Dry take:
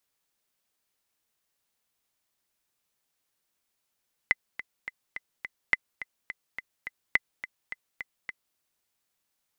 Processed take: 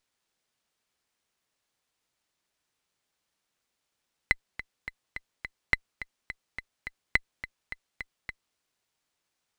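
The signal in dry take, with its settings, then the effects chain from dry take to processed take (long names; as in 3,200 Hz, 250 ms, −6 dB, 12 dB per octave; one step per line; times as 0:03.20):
click track 211 BPM, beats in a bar 5, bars 3, 2,030 Hz, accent 14.5 dB −7.5 dBFS
windowed peak hold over 3 samples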